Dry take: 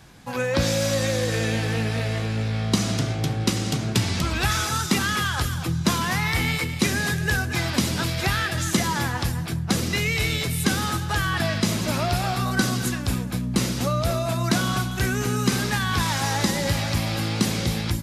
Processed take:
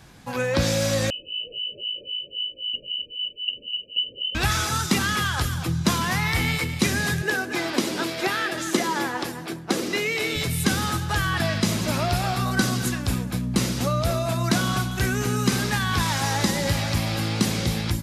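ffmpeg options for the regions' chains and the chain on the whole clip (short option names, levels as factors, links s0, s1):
-filter_complex "[0:a]asettb=1/sr,asplit=3[s0][s1][s2];[s0]atrim=end=1.104[s3];[s1]atrim=start=1.1:end=4.35,asetpts=PTS-STARTPTS,afade=t=in:d=0.004:c=qsin,afade=t=out:st=3.246:d=0.004:c=qsin,acrossover=split=1000[s4][s5];[s4]aeval=exprs='val(0)*(1-1/2+1/2*cos(2*PI*3.8*n/s))':c=same[s6];[s5]aeval=exprs='val(0)*(1-1/2-1/2*cos(2*PI*3.8*n/s))':c=same[s7];[s6][s7]amix=inputs=2:normalize=0,lowpass=f=2600:t=q:w=0.5098,lowpass=f=2600:t=q:w=0.6013,lowpass=f=2600:t=q:w=0.9,lowpass=f=2600:t=q:w=2.563,afreqshift=-3100,asuperstop=centerf=1300:order=20:qfactor=0.56[s8];[s2]atrim=start=4.346[s9];[s3][s8]acrossfade=d=0.004:c1=hsin:c2=qsin[s10];[s10][s9]acrossfade=d=0.004:c1=qsin:c2=hsin,asettb=1/sr,asplit=3[s11][s12][s13];[s11]atrim=end=7.224[s14];[s12]atrim=start=7.22:end=10.36,asetpts=PTS-STARTPTS,afade=t=in:d=0.004:c=qsin,afade=t=out:st=3.136:d=0.004:c=qsin,highpass=f=330:t=q:w=1.8,highshelf=f=4300:g=-4.5[s15];[s13]atrim=start=10.356[s16];[s14][s15]acrossfade=d=0.004:c1=hsin:c2=qsin[s17];[s17][s16]acrossfade=d=0.004:c1=qsin:c2=hsin"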